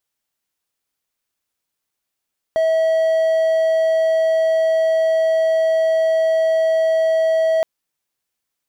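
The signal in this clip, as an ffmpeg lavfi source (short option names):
-f lavfi -i "aevalsrc='0.266*(1-4*abs(mod(646*t+0.25,1)-0.5))':d=5.07:s=44100"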